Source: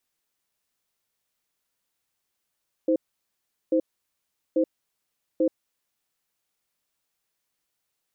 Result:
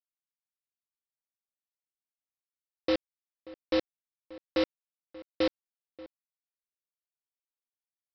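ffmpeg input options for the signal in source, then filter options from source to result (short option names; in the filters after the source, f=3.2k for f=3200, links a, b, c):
-f lavfi -i "aevalsrc='0.0891*(sin(2*PI*320*t)+sin(2*PI*518*t))*clip(min(mod(t,0.84),0.08-mod(t,0.84))/0.005,0,1)':d=3.26:s=44100"
-filter_complex "[0:a]aemphasis=mode=production:type=riaa,aresample=11025,acrusher=bits=4:mix=0:aa=0.000001,aresample=44100,asplit=2[a][b];[b]adelay=583.1,volume=-19dB,highshelf=f=4k:g=-13.1[c];[a][c]amix=inputs=2:normalize=0"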